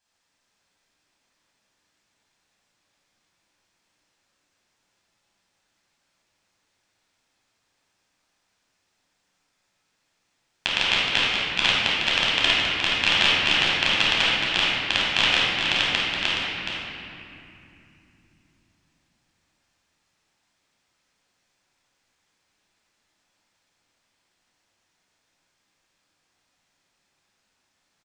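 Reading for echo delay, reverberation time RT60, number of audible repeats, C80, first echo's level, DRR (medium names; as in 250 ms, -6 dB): 421 ms, 2.8 s, 1, -2.5 dB, -7.0 dB, -8.0 dB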